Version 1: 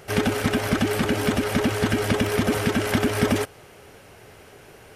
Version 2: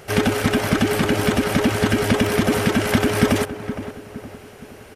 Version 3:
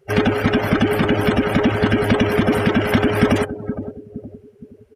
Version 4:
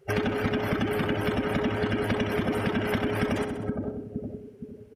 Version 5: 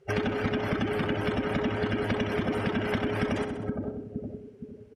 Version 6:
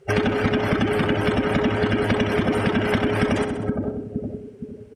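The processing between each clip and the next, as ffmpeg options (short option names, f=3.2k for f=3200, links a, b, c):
-filter_complex "[0:a]asplit=2[a][b];[b]adelay=465,lowpass=f=1.6k:p=1,volume=-11dB,asplit=2[c][d];[d]adelay=465,lowpass=f=1.6k:p=1,volume=0.46,asplit=2[e][f];[f]adelay=465,lowpass=f=1.6k:p=1,volume=0.46,asplit=2[g][h];[h]adelay=465,lowpass=f=1.6k:p=1,volume=0.46,asplit=2[i][j];[j]adelay=465,lowpass=f=1.6k:p=1,volume=0.46[k];[a][c][e][g][i][k]amix=inputs=6:normalize=0,volume=3.5dB"
-filter_complex "[0:a]asplit=2[a][b];[b]asoftclip=type=tanh:threshold=-13dB,volume=-5dB[c];[a][c]amix=inputs=2:normalize=0,afftdn=nr=27:nf=-26,volume=-1dB"
-filter_complex "[0:a]asplit=2[a][b];[b]aecho=0:1:64|128|192|256|320:0.316|0.155|0.0759|0.0372|0.0182[c];[a][c]amix=inputs=2:normalize=0,acompressor=threshold=-26dB:ratio=3,volume=-1dB"
-af "lowpass=8k,volume=-1.5dB"
-af "equalizer=f=8.5k:w=3:g=6,volume=7.5dB"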